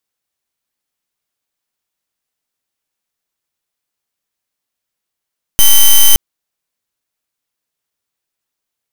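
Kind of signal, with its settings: pulse 3070 Hz, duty 8% -4.5 dBFS 0.57 s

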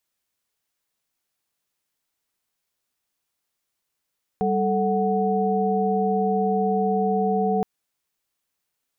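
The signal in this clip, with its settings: chord G3/A4/F#5 sine, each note -23.5 dBFS 3.22 s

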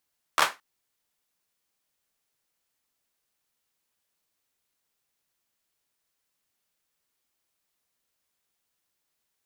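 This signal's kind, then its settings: hand clap length 0.22 s, apart 13 ms, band 1200 Hz, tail 0.22 s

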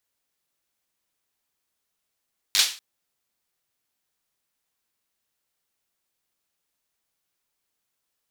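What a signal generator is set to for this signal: hand clap length 0.24 s, bursts 5, apart 10 ms, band 3900 Hz, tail 0.36 s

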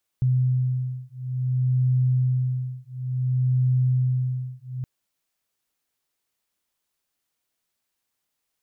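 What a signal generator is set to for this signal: beating tones 127 Hz, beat 0.57 Hz, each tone -23 dBFS 4.62 s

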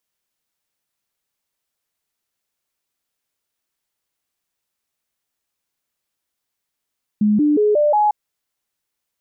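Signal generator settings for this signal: stepped sine 210 Hz up, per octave 2, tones 5, 0.18 s, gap 0.00 s -12 dBFS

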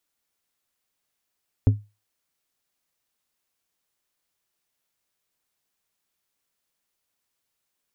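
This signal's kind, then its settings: glass hit plate, lowest mode 104 Hz, decay 0.26 s, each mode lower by 8.5 dB, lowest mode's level -9.5 dB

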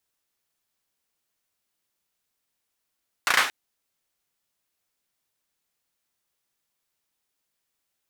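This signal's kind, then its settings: hand clap length 0.23 s, apart 34 ms, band 1500 Hz, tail 0.44 s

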